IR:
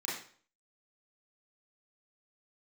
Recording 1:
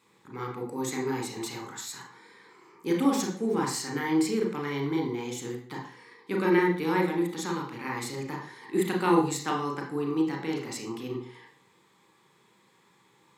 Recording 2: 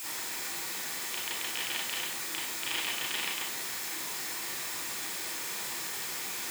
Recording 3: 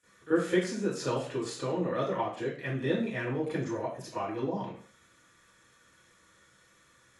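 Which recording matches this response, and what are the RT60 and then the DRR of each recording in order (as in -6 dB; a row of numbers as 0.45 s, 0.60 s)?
2; 0.50 s, 0.50 s, 0.50 s; 0.5 dB, -7.0 dB, -16.0 dB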